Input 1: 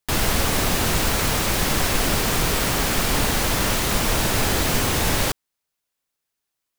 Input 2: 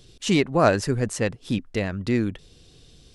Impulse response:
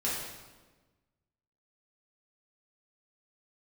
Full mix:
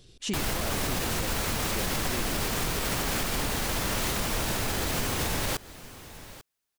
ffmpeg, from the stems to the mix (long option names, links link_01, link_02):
-filter_complex "[0:a]adelay=250,volume=-1.5dB,asplit=2[link_01][link_02];[link_02]volume=-23dB[link_03];[1:a]acompressor=threshold=-26dB:ratio=3,volume=-3.5dB[link_04];[link_03]aecho=0:1:843:1[link_05];[link_01][link_04][link_05]amix=inputs=3:normalize=0,alimiter=limit=-19dB:level=0:latency=1:release=144"